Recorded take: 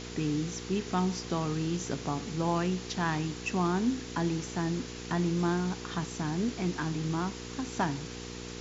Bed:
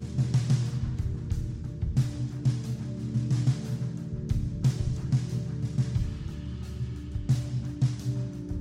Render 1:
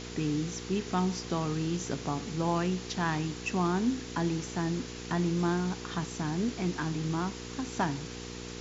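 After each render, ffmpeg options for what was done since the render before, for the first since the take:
-af anull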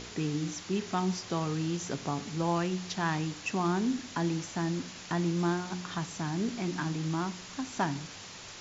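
-af "bandreject=f=60:t=h:w=4,bandreject=f=120:t=h:w=4,bandreject=f=180:t=h:w=4,bandreject=f=240:t=h:w=4,bandreject=f=300:t=h:w=4,bandreject=f=360:t=h:w=4,bandreject=f=420:t=h:w=4,bandreject=f=480:t=h:w=4"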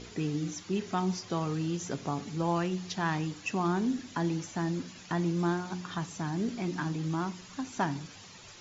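-af "afftdn=nr=9:nf=-46"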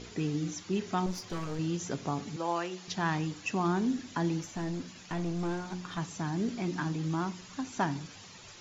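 -filter_complex "[0:a]asettb=1/sr,asplit=3[s0][s1][s2];[s0]atrim=end=1.064[s3];[s1]atrim=start=1.06:end=1.59,asetpts=PTS-STARTPTS,afade=t=in:d=0.004:c=qsin,afade=t=out:st=0.526:d=0.004:c=qsin,aeval=exprs='clip(val(0),-1,0.00891)':c=same[s4];[s2]atrim=start=1.586[s5];[s3][s4]acrossfade=d=0.004:c1=hsin:c2=qsin[s6];[s6][s5]acrossfade=d=0.004:c1=qsin:c2=hsin,asettb=1/sr,asplit=3[s7][s8][s9];[s7]atrim=end=2.364[s10];[s8]atrim=start=2.36:end=2.88,asetpts=PTS-STARTPTS,afade=t=in:d=0.004:c=qsin,afade=t=out:st=0.516:d=0.004:c=qsin,highpass=390[s11];[s9]atrim=start=2.876[s12];[s10][s11]acrossfade=d=0.004:c1=hsin:c2=qsin[s13];[s13][s12]acrossfade=d=0.004:c1=qsin:c2=hsin,asettb=1/sr,asplit=3[s14][s15][s16];[s14]atrim=end=4.414[s17];[s15]atrim=start=4.41:end=5.98,asetpts=PTS-STARTPTS,afade=t=in:d=0.004:c=qsin,afade=t=out:st=1.566:d=0.004:c=qsin,aeval=exprs='(tanh(22.4*val(0)+0.35)-tanh(0.35))/22.4':c=same[s18];[s16]atrim=start=5.976[s19];[s17][s18]acrossfade=d=0.004:c1=hsin:c2=qsin[s20];[s20][s19]acrossfade=d=0.004:c1=qsin:c2=hsin"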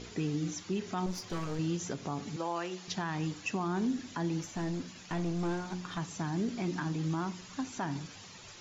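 -af "alimiter=limit=0.0631:level=0:latency=1:release=135"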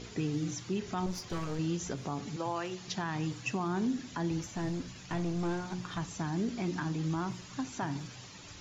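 -filter_complex "[1:a]volume=0.075[s0];[0:a][s0]amix=inputs=2:normalize=0"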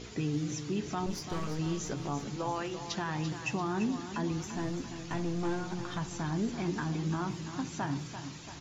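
-filter_complex "[0:a]asplit=2[s0][s1];[s1]adelay=14,volume=0.282[s2];[s0][s2]amix=inputs=2:normalize=0,aecho=1:1:340|680|1020|1360|1700|2040:0.316|0.177|0.0992|0.0555|0.0311|0.0174"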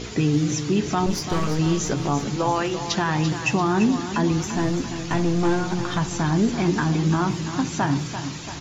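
-af "volume=3.98"

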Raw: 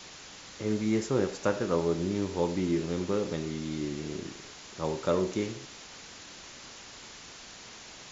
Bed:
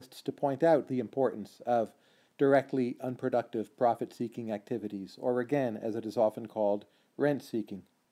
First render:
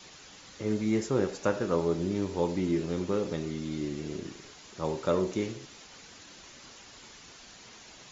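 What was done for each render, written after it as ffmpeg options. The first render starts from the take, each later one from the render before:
-af "afftdn=nr=6:nf=-48"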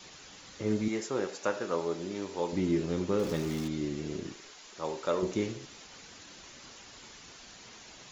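-filter_complex "[0:a]asettb=1/sr,asplit=3[s0][s1][s2];[s0]atrim=end=0.884[s3];[s1]atrim=start=0.88:end=2.53,asetpts=PTS-STARTPTS,afade=t=in:d=0.004:c=qsin,afade=t=out:st=1.646:d=0.004:c=qsin,highpass=f=540:p=1[s4];[s2]atrim=start=2.526[s5];[s3][s4]acrossfade=d=0.004:c1=hsin:c2=qsin[s6];[s6][s5]acrossfade=d=0.004:c1=qsin:c2=hsin,asettb=1/sr,asplit=3[s7][s8][s9];[s7]atrim=end=3.194[s10];[s8]atrim=start=3.19:end=3.68,asetpts=PTS-STARTPTS,afade=t=in:d=0.004:c=qsin,afade=t=out:st=0.486:d=0.004:c=qsin,aeval=exprs='val(0)+0.5*0.0126*sgn(val(0))':c=same[s11];[s9]atrim=start=3.676[s12];[s10][s11]acrossfade=d=0.004:c1=hsin:c2=qsin[s13];[s13][s12]acrossfade=d=0.004:c1=qsin:c2=hsin,asettb=1/sr,asplit=3[s14][s15][s16];[s14]atrim=end=4.344[s17];[s15]atrim=start=4.34:end=5.23,asetpts=PTS-STARTPTS,afade=t=in:d=0.004:c=qsin,afade=t=out:st=0.886:d=0.004:c=qsin,equalizer=f=94:t=o:w=2.8:g=-14.5[s18];[s16]atrim=start=5.226[s19];[s17][s18]acrossfade=d=0.004:c1=hsin:c2=qsin[s20];[s20][s19]acrossfade=d=0.004:c1=qsin:c2=hsin"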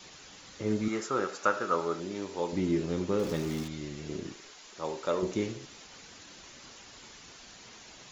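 -filter_complex "[0:a]asettb=1/sr,asplit=3[s0][s1][s2];[s0]atrim=end=0.834[s3];[s1]atrim=start=0.83:end=2,asetpts=PTS-STARTPTS,afade=t=in:d=0.004:c=qsin,afade=t=out:st=1.166:d=0.004:c=qsin,equalizer=f=1300:t=o:w=0.35:g=13.5[s4];[s2]atrim=start=1.996[s5];[s3][s4]acrossfade=d=0.004:c1=hsin:c2=qsin[s6];[s6][s5]acrossfade=d=0.004:c1=qsin:c2=hsin,asettb=1/sr,asplit=3[s7][s8][s9];[s7]atrim=end=3.634[s10];[s8]atrim=start=3.63:end=4.09,asetpts=PTS-STARTPTS,afade=t=in:d=0.004:c=qsin,afade=t=out:st=0.456:d=0.004:c=qsin,equalizer=f=300:t=o:w=1.3:g=-8[s11];[s9]atrim=start=4.086[s12];[s10][s11]acrossfade=d=0.004:c1=hsin:c2=qsin[s13];[s13][s12]acrossfade=d=0.004:c1=qsin:c2=hsin"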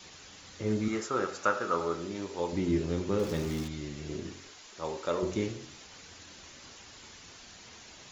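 -af "equalizer=f=85:w=3.8:g=10,bandreject=f=45.38:t=h:w=4,bandreject=f=90.76:t=h:w=4,bandreject=f=136.14:t=h:w=4,bandreject=f=181.52:t=h:w=4,bandreject=f=226.9:t=h:w=4,bandreject=f=272.28:t=h:w=4,bandreject=f=317.66:t=h:w=4,bandreject=f=363.04:t=h:w=4,bandreject=f=408.42:t=h:w=4,bandreject=f=453.8:t=h:w=4,bandreject=f=499.18:t=h:w=4,bandreject=f=544.56:t=h:w=4,bandreject=f=589.94:t=h:w=4,bandreject=f=635.32:t=h:w=4,bandreject=f=680.7:t=h:w=4,bandreject=f=726.08:t=h:w=4,bandreject=f=771.46:t=h:w=4,bandreject=f=816.84:t=h:w=4,bandreject=f=862.22:t=h:w=4,bandreject=f=907.6:t=h:w=4,bandreject=f=952.98:t=h:w=4,bandreject=f=998.36:t=h:w=4,bandreject=f=1043.74:t=h:w=4,bandreject=f=1089.12:t=h:w=4,bandreject=f=1134.5:t=h:w=4,bandreject=f=1179.88:t=h:w=4,bandreject=f=1225.26:t=h:w=4,bandreject=f=1270.64:t=h:w=4,bandreject=f=1316.02:t=h:w=4,bandreject=f=1361.4:t=h:w=4,bandreject=f=1406.78:t=h:w=4,bandreject=f=1452.16:t=h:w=4"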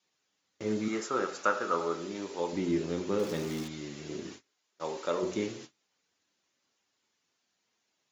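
-af "agate=range=0.0398:threshold=0.00631:ratio=16:detection=peak,highpass=180"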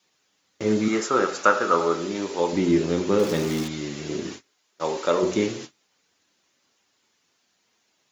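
-af "volume=2.99"

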